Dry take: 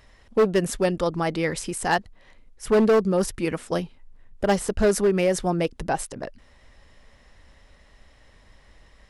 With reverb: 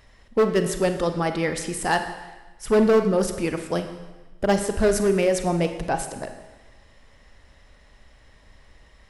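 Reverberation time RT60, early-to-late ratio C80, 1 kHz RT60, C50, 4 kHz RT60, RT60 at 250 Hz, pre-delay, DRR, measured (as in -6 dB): 1.2 s, 10.0 dB, 1.2 s, 8.5 dB, 1.1 s, 1.2 s, 34 ms, 7.5 dB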